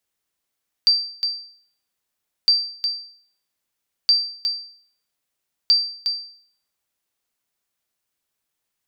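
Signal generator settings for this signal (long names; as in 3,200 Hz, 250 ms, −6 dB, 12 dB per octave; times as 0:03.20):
ping with an echo 4,680 Hz, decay 0.55 s, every 1.61 s, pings 4, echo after 0.36 s, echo −7.5 dB −8.5 dBFS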